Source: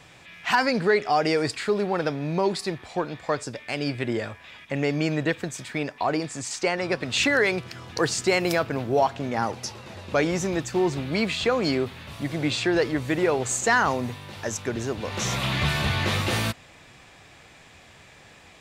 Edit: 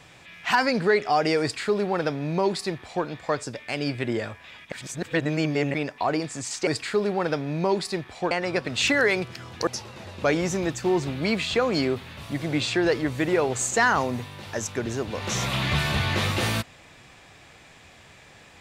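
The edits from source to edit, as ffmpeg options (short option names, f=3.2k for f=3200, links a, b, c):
-filter_complex "[0:a]asplit=6[a][b][c][d][e][f];[a]atrim=end=4.722[g];[b]atrim=start=4.718:end=5.742,asetpts=PTS-STARTPTS,areverse[h];[c]atrim=start=5.738:end=6.672[i];[d]atrim=start=1.408:end=3.052[j];[e]atrim=start=6.668:end=8.032[k];[f]atrim=start=9.568[l];[g][h]acrossfade=d=0.004:c1=hsin:c2=hsin[m];[m][i]acrossfade=d=0.004:c1=hsin:c2=hsin[n];[n][j]acrossfade=d=0.004:c1=hsin:c2=hsin[o];[o][k]acrossfade=d=0.004:c1=hsin:c2=hsin[p];[p][l]acrossfade=d=0.004:c1=hsin:c2=hsin"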